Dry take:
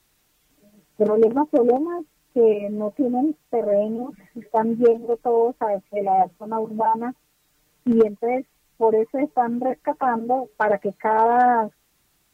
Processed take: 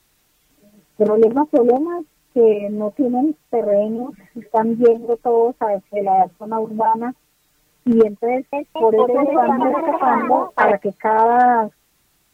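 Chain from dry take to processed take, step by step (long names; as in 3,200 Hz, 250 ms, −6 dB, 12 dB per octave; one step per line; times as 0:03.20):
0:08.30–0:10.76: delay with pitch and tempo change per echo 227 ms, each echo +2 semitones, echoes 3
level +3.5 dB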